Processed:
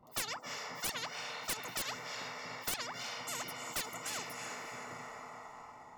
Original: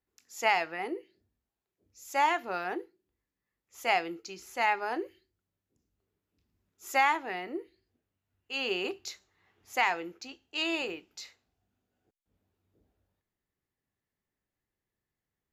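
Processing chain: on a send: echo that smears into a reverb 929 ms, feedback 48%, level -12.5 dB; on the sum: wide varispeed 2.6×; integer overflow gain 18 dB; Savitzky-Golay filter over 65 samples; spectrum-flattening compressor 10:1; trim +4.5 dB

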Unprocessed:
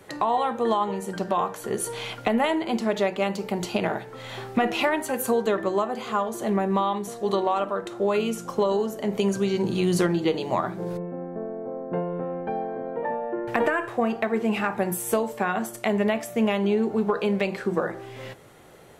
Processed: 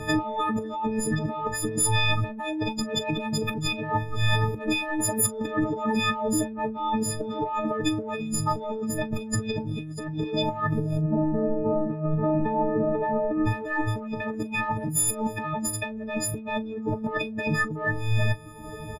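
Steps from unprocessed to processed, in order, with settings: partials quantised in pitch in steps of 6 st; RIAA curve playback; reverb removal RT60 1 s; bass shelf 83 Hz +5.5 dB; in parallel at -11 dB: saturation -18.5 dBFS, distortion -11 dB; on the sum: compressor with a negative ratio -28 dBFS, ratio -1; on a send: early reflections 17 ms -12.5 dB, 39 ms -17.5 dB

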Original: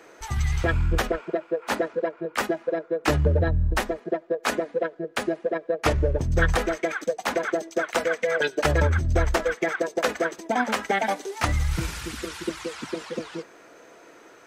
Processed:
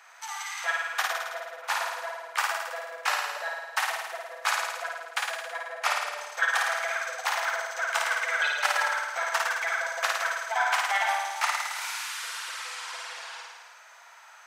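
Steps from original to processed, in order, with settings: steep high-pass 790 Hz 36 dB/octave; on a send: flutter echo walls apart 9.3 m, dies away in 1.3 s; on the sum: trim -1 dB

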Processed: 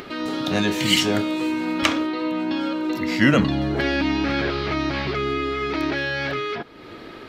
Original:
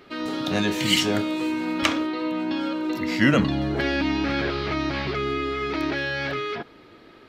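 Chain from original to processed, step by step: upward compressor, threshold -31 dBFS; trim +2 dB

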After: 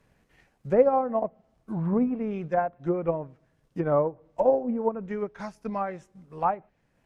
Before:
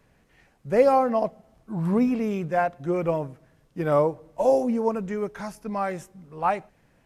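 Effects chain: transient shaper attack +5 dB, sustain -5 dB; low-pass that closes with the level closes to 1.3 kHz, closed at -20 dBFS; trim -3.5 dB

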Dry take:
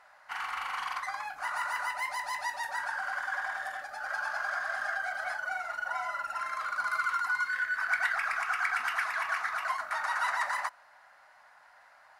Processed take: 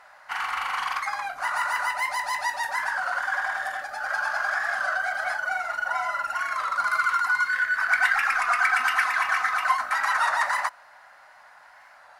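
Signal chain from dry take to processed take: 7.97–10.18 s: comb 3.9 ms, depth 61%; warped record 33 1/3 rpm, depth 100 cents; trim +7 dB

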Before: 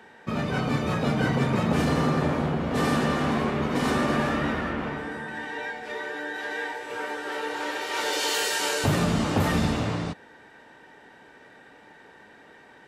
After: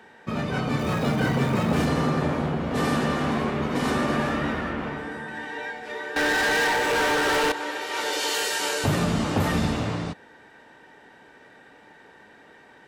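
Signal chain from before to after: 0.79–1.86 s: jump at every zero crossing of -35 dBFS; 6.16–7.52 s: waveshaping leveller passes 5

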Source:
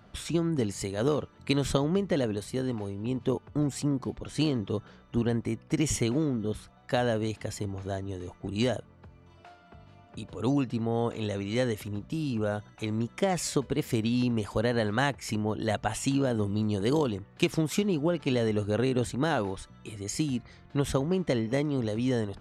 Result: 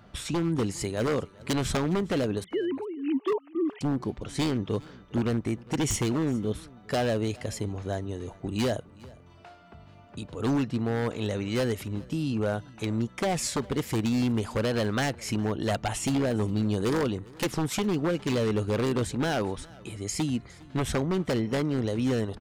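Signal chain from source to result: 2.44–3.81 s: formants replaced by sine waves; wavefolder -22 dBFS; delay 408 ms -23.5 dB; trim +2 dB

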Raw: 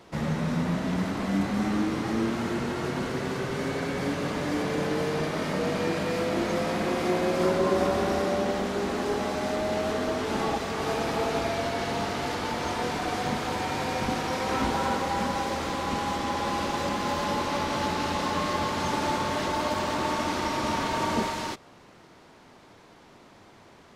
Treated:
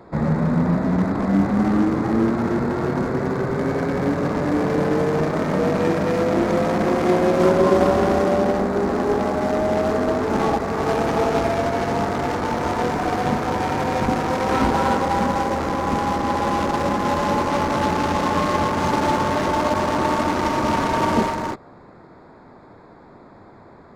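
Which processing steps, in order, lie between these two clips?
local Wiener filter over 15 samples; trim +8.5 dB

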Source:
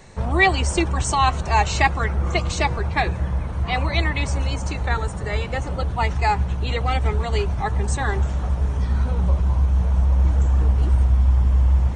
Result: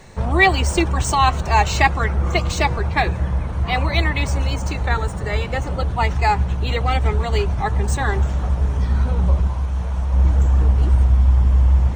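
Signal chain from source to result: median filter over 3 samples; 9.47–10.14 s: bass shelf 500 Hz -6.5 dB; trim +2.5 dB

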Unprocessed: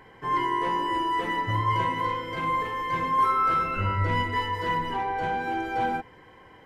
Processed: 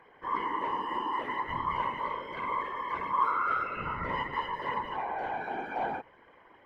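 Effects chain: tone controls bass -10 dB, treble -13 dB; whisper effect; trim -5.5 dB

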